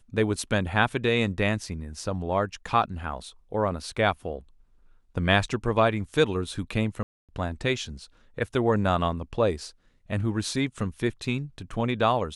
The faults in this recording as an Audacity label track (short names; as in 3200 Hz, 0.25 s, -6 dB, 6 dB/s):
7.030000	7.290000	gap 0.257 s